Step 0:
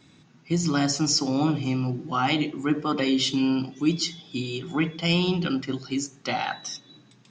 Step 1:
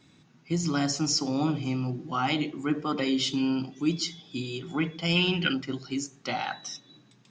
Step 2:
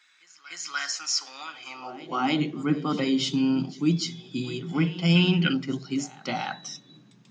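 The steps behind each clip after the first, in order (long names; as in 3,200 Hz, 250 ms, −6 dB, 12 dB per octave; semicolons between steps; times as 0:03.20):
gain on a spectral selection 0:05.16–0:05.53, 1,400–3,200 Hz +11 dB; level −3.5 dB
high-pass filter sweep 1,600 Hz → 160 Hz, 0:01.58–0:02.44; echo ahead of the sound 297 ms −18 dB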